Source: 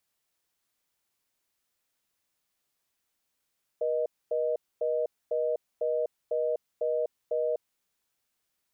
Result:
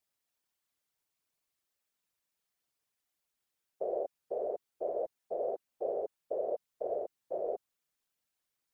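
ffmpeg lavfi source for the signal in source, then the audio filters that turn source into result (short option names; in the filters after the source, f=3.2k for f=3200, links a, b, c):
-f lavfi -i "aevalsrc='0.0398*(sin(2*PI*480*t)+sin(2*PI*620*t))*clip(min(mod(t,0.5),0.25-mod(t,0.5))/0.005,0,1)':d=3.84:s=44100"
-af "afftfilt=real='hypot(re,im)*cos(2*PI*random(0))':imag='hypot(re,im)*sin(2*PI*random(1))':win_size=512:overlap=0.75"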